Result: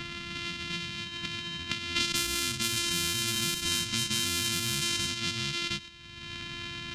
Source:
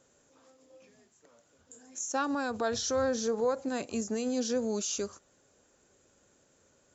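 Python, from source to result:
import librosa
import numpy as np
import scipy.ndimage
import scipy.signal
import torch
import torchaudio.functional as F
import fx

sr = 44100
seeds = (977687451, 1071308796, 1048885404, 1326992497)

p1 = np.r_[np.sort(x[:len(x) // 128 * 128].reshape(-1, 128), axis=1).ravel(), x[len(x) // 128 * 128:]]
p2 = p1 + fx.echo_single(p1, sr, ms=713, db=-8.5, dry=0)
p3 = fx.env_lowpass(p2, sr, base_hz=2900.0, full_db=-27.5)
p4 = fx.over_compress(p3, sr, threshold_db=-35.0, ratio=-1.0)
p5 = p3 + (p4 * librosa.db_to_amplitude(-1.5))
p6 = fx.curve_eq(p5, sr, hz=(260.0, 560.0, 4000.0), db=(0, -23, 10))
p7 = fx.formant_shift(p6, sr, semitones=-4)
p8 = fx.band_squash(p7, sr, depth_pct=100)
y = p8 * librosa.db_to_amplitude(-2.5)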